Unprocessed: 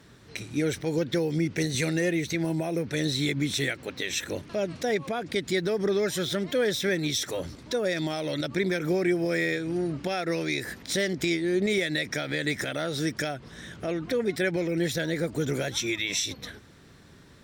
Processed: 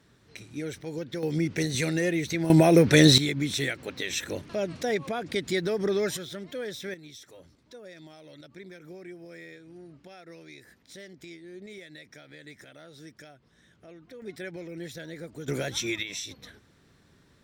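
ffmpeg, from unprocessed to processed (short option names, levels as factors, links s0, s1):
-af "asetnsamples=n=441:p=0,asendcmd='1.23 volume volume -0.5dB;2.5 volume volume 11.5dB;3.18 volume volume -1dB;6.17 volume volume -10dB;6.94 volume volume -19dB;14.22 volume volume -12dB;15.48 volume volume -1.5dB;16.03 volume volume -8dB',volume=0.398"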